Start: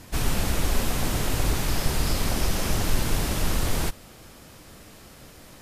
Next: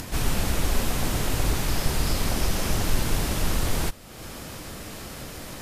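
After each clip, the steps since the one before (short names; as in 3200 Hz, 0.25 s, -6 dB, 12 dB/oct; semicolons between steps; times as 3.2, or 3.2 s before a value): upward compressor, threshold -27 dBFS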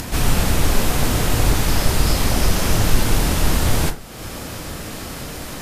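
reverb RT60 0.35 s, pre-delay 22 ms, DRR 8 dB; gain +6.5 dB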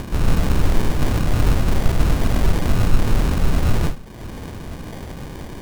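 fixed phaser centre 2700 Hz, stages 8; sample-and-hold 33×; gain +1 dB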